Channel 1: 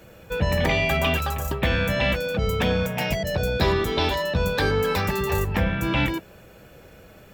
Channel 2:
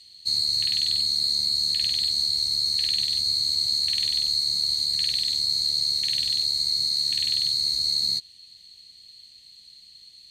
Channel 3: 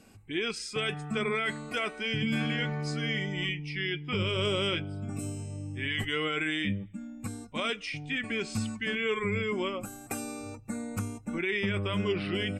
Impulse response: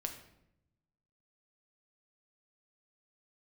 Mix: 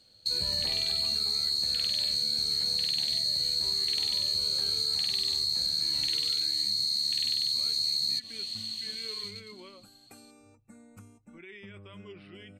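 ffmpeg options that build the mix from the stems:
-filter_complex "[0:a]volume=0.251[s0];[1:a]highpass=100,asoftclip=type=tanh:threshold=0.224,dynaudnorm=f=130:g=17:m=3.76,volume=1.19[s1];[2:a]volume=0.133[s2];[s0][s1]amix=inputs=2:normalize=0,agate=range=0.224:threshold=0.0112:ratio=16:detection=peak,acompressor=threshold=0.0794:ratio=6,volume=1[s3];[s2][s3]amix=inputs=2:normalize=0,acompressor=threshold=0.0316:ratio=2"

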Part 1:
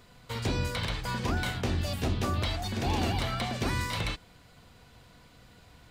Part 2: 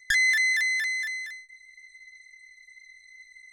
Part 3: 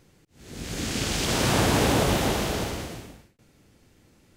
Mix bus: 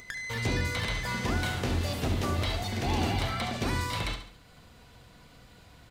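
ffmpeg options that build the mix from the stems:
-filter_complex "[0:a]volume=0.944,asplit=2[s0][s1];[s1]volume=0.376[s2];[1:a]acompressor=threshold=0.0316:ratio=6,volume=1.26,asplit=2[s3][s4];[s4]volume=0.0794[s5];[2:a]volume=0.211[s6];[s3][s6]amix=inputs=2:normalize=0,acompressor=threshold=0.0126:ratio=4,volume=1[s7];[s2][s5]amix=inputs=2:normalize=0,aecho=0:1:69|138|207|276|345|414:1|0.41|0.168|0.0689|0.0283|0.0116[s8];[s0][s7][s8]amix=inputs=3:normalize=0,acompressor=mode=upward:threshold=0.00355:ratio=2.5"

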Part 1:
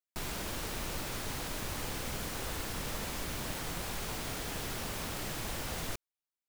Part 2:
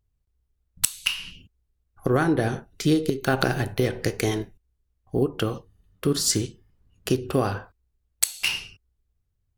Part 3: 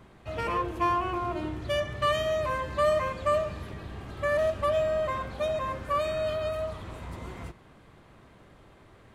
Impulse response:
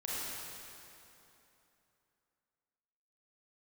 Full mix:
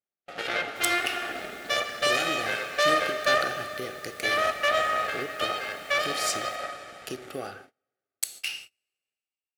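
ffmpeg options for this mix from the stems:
-filter_complex "[0:a]adelay=600,volume=0.282[s0];[1:a]volume=0.398,asplit=2[s1][s2];[s2]volume=0.133[s3];[2:a]aeval=exprs='0.2*(cos(1*acos(clip(val(0)/0.2,-1,1)))-cos(1*PI/2))+0.0891*(cos(2*acos(clip(val(0)/0.2,-1,1)))-cos(2*PI/2))+0.0126*(cos(5*acos(clip(val(0)/0.2,-1,1)))-cos(5*PI/2))+0.0631*(cos(6*acos(clip(val(0)/0.2,-1,1)))-cos(6*PI/2))+0.0447*(cos(7*acos(clip(val(0)/0.2,-1,1)))-cos(7*PI/2))':c=same,volume=0.841,asplit=2[s4][s5];[s5]volume=0.398[s6];[3:a]atrim=start_sample=2205[s7];[s3][s6]amix=inputs=2:normalize=0[s8];[s8][s7]afir=irnorm=-1:irlink=0[s9];[s0][s1][s4][s9]amix=inputs=4:normalize=0,asuperstop=centerf=1000:order=4:qfactor=3.4,agate=range=0.0316:threshold=0.00794:ratio=16:detection=peak,highpass=f=640:p=1"

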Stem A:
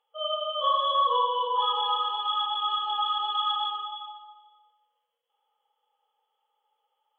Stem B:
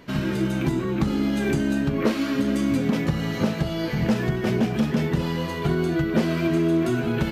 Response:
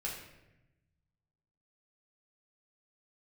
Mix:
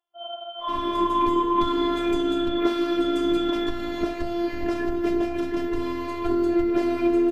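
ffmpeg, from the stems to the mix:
-filter_complex "[0:a]volume=1.06[s0];[1:a]bandreject=f=640:w=21,adelay=600,volume=0.841[s1];[s0][s1]amix=inputs=2:normalize=0,highshelf=f=2100:g=-9.5,dynaudnorm=f=270:g=7:m=2,afftfilt=real='hypot(re,im)*cos(PI*b)':imag='0':win_size=512:overlap=0.75"

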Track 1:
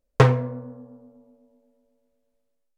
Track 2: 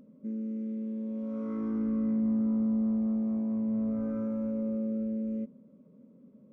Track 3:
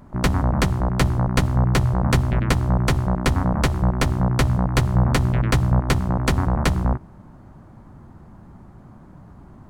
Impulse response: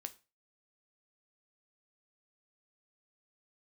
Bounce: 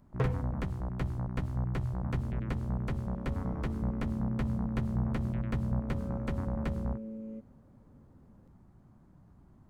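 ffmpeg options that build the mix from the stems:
-filter_complex "[0:a]volume=0.211[s0];[1:a]highpass=290,adelay=1950,volume=0.794[s1];[2:a]volume=0.211[s2];[s0][s1][s2]amix=inputs=3:normalize=0,acrossover=split=2700[s3][s4];[s4]acompressor=threshold=0.00141:ratio=4:attack=1:release=60[s5];[s3][s5]amix=inputs=2:normalize=0,equalizer=f=1100:w=0.4:g=-5"

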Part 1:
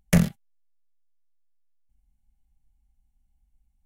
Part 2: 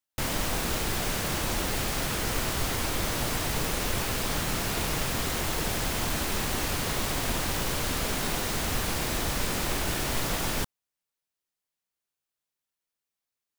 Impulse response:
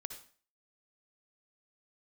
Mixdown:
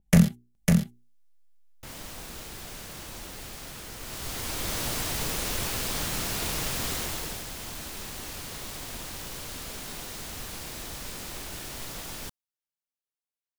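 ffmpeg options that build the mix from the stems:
-filter_complex "[0:a]equalizer=f=200:w=1.5:g=5,bandreject=f=60:t=h:w=6,bandreject=f=120:t=h:w=6,bandreject=f=180:t=h:w=6,bandreject=f=240:t=h:w=6,bandreject=f=300:t=h:w=6,bandreject=f=360:t=h:w=6,bandreject=f=420:t=h:w=6,dynaudnorm=f=150:g=11:m=2.99,volume=0.841,asplit=2[s0][s1];[s1]volume=0.668[s2];[1:a]adelay=1650,volume=0.668,afade=t=in:st=4:d=0.78:silence=0.316228,afade=t=out:st=6.92:d=0.53:silence=0.398107[s3];[s2]aecho=0:1:551:1[s4];[s0][s3][s4]amix=inputs=3:normalize=0,adynamicequalizer=threshold=0.00316:dfrequency=2800:dqfactor=0.7:tfrequency=2800:tqfactor=0.7:attack=5:release=100:ratio=0.375:range=2.5:mode=boostabove:tftype=highshelf"

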